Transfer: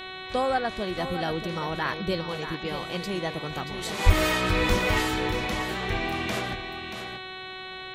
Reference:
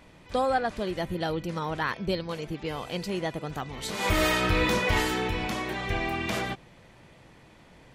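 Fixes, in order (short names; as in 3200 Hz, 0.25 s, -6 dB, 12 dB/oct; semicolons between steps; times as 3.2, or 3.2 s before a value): de-hum 374.3 Hz, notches 11; 4.05–4.17 HPF 140 Hz 24 dB/oct; inverse comb 0.631 s -9.5 dB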